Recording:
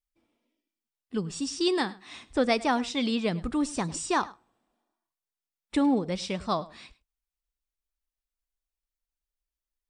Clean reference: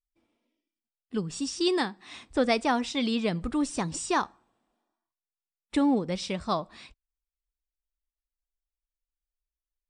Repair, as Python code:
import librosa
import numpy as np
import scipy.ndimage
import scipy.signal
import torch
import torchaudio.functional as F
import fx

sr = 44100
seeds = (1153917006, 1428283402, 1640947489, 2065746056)

y = fx.fix_echo_inverse(x, sr, delay_ms=103, level_db=-20.0)